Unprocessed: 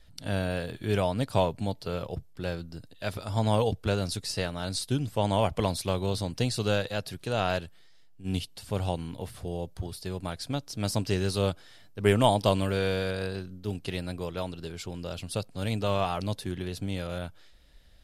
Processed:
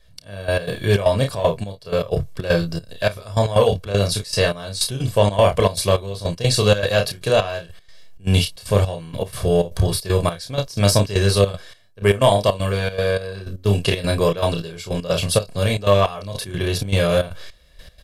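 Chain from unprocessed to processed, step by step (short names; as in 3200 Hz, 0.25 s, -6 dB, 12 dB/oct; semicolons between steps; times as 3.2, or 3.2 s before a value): low shelf 88 Hz -6 dB; comb 1.8 ms, depth 55%; on a send: early reflections 30 ms -4.5 dB, 53 ms -15.5 dB; on the sum: AGC gain up to 16 dB; in parallel at -4.5 dB: soft clip -9.5 dBFS, distortion -15 dB; on the sum: step gate "xx...x.xxx.xxx." 156 bpm -12 dB; gain -3 dB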